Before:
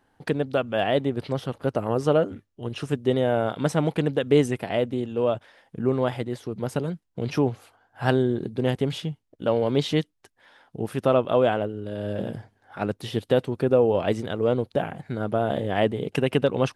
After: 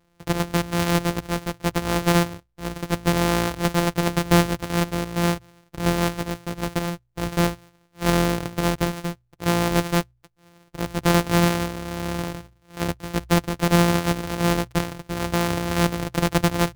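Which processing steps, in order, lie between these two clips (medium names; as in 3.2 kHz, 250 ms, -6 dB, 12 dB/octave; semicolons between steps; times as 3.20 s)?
sorted samples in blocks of 256 samples; de-hum 60.82 Hz, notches 2; trim +1.5 dB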